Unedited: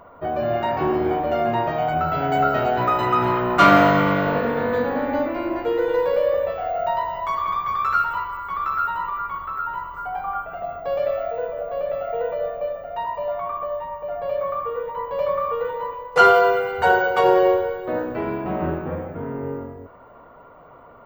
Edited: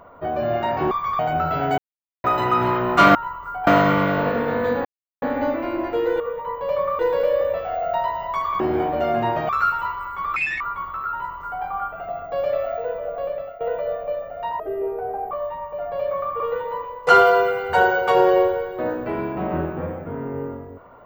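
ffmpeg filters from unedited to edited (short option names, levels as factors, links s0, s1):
-filter_complex "[0:a]asplit=18[s0][s1][s2][s3][s4][s5][s6][s7][s8][s9][s10][s11][s12][s13][s14][s15][s16][s17];[s0]atrim=end=0.912[s18];[s1]atrim=start=7.528:end=7.812[s19];[s2]atrim=start=1.798:end=2.39,asetpts=PTS-STARTPTS,afade=t=out:st=0.588:d=0.004:c=hsin[s20];[s3]atrim=start=2.39:end=2.85,asetpts=PTS-STARTPTS,volume=0[s21];[s4]atrim=start=2.85:end=3.762,asetpts=PTS-STARTPTS,afade=t=in:d=0.004:c=hsin[s22];[s5]atrim=start=9.658:end=10.182[s23];[s6]atrim=start=3.758:end=4.94,asetpts=PTS-STARTPTS,afade=t=out:st=1.178:d=0.004:c=hsin,apad=pad_dur=0.37[s24];[s7]atrim=start=4.94:end=5.922,asetpts=PTS-STARTPTS,afade=t=in:d=0.004:c=hsin[s25];[s8]atrim=start=14.698:end=15.492[s26];[s9]atrim=start=5.918:end=7.532[s27];[s10]atrim=start=0.908:end=1.802[s28];[s11]atrim=start=7.808:end=8.684[s29];[s12]atrim=start=8.68:end=9.14,asetpts=PTS-STARTPTS,asetrate=82908,aresample=44100,atrim=end_sample=10790,asetpts=PTS-STARTPTS[s30];[s13]atrim=start=9.136:end=12.14,asetpts=PTS-STARTPTS,afade=t=out:st=2.624:d=0.38:silence=0.16788[s31];[s14]atrim=start=12.14:end=13.134,asetpts=PTS-STARTPTS,afade=t=in:d=0.004:c=hsin:silence=0.16788[s32];[s15]atrim=start=13.13:end=13.61,asetpts=PTS-STARTPTS,asetrate=29547,aresample=44100,atrim=end_sample=31594,asetpts=PTS-STARTPTS[s33];[s16]atrim=start=13.606:end=14.702[s34];[s17]atrim=start=15.488[s35];[s18][s19]acrossfade=d=0.004:c1=hsin:c2=hsin[s36];[s20][s21][s22]concat=n=3:v=0:a=1[s37];[s36][s37]acrossfade=d=0.004:c1=hsin:c2=hsin[s38];[s38][s23]acrossfade=d=0.004:c1=hsin:c2=hsin[s39];[s24][s25]concat=n=2:v=0:a=1[s40];[s39][s40]acrossfade=d=0.004:c1=hsin:c2=hsin[s41];[s41][s26]acrossfade=d=0.004:c1=hsin:c2=hsin[s42];[s42][s27]acrossfade=d=0.004:c1=hsin:c2=hsin[s43];[s43][s28]acrossfade=d=0.004:c1=hsin:c2=hsin[s44];[s44][s29]acrossfade=d=0.004:c1=hsin:c2=hsin[s45];[s45][s30]acrossfade=d=0.004:c1=hsin:c2=hsin[s46];[s31][s32]concat=n=2:v=0:a=1[s47];[s46][s47]acrossfade=d=0.004:c1=hsin:c2=hsin[s48];[s48][s33]acrossfade=d=0.004:c1=hsin:c2=hsin[s49];[s49][s34]acrossfade=d=0.004:c1=hsin:c2=hsin[s50];[s50][s35]acrossfade=d=0.004:c1=hsin:c2=hsin"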